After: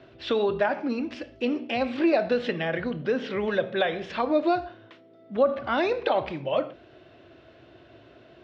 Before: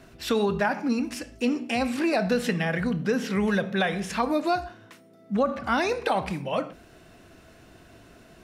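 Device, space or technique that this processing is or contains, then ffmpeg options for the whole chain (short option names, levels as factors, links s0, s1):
guitar cabinet: -af "highpass=76,equalizer=f=120:t=q:w=4:g=4,equalizer=f=190:t=q:w=4:g=-10,equalizer=f=350:t=q:w=4:g=7,equalizer=f=580:t=q:w=4:g=8,equalizer=f=3300:t=q:w=4:g=5,lowpass=f=4200:w=0.5412,lowpass=f=4200:w=1.3066,volume=0.75"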